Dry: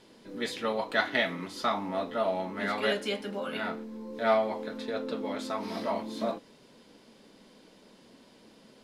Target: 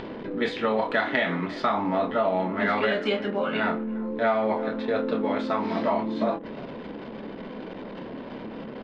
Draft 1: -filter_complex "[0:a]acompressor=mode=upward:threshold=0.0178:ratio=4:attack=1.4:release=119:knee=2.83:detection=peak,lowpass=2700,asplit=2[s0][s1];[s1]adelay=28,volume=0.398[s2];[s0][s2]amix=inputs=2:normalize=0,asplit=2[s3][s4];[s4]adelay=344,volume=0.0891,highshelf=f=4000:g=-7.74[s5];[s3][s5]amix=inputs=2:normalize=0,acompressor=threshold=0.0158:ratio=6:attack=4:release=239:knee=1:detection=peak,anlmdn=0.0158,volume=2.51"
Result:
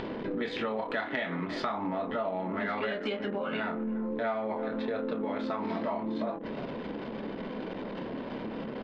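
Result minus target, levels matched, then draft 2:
compression: peak gain reduction +8.5 dB
-filter_complex "[0:a]acompressor=mode=upward:threshold=0.0178:ratio=4:attack=1.4:release=119:knee=2.83:detection=peak,lowpass=2700,asplit=2[s0][s1];[s1]adelay=28,volume=0.398[s2];[s0][s2]amix=inputs=2:normalize=0,asplit=2[s3][s4];[s4]adelay=344,volume=0.0891,highshelf=f=4000:g=-7.74[s5];[s3][s5]amix=inputs=2:normalize=0,acompressor=threshold=0.0501:ratio=6:attack=4:release=239:knee=1:detection=peak,anlmdn=0.0158,volume=2.51"

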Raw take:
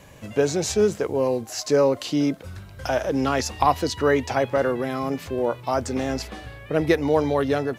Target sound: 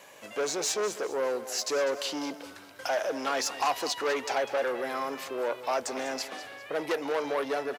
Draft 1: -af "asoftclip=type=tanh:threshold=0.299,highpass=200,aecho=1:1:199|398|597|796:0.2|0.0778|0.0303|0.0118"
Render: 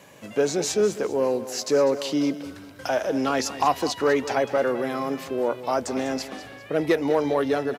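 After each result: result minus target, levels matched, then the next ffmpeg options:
saturation: distortion -11 dB; 250 Hz band +6.0 dB
-af "asoftclip=type=tanh:threshold=0.0891,highpass=200,aecho=1:1:199|398|597|796:0.2|0.0778|0.0303|0.0118"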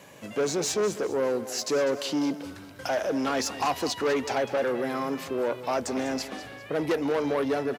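250 Hz band +6.5 dB
-af "asoftclip=type=tanh:threshold=0.0891,highpass=500,aecho=1:1:199|398|597|796:0.2|0.0778|0.0303|0.0118"

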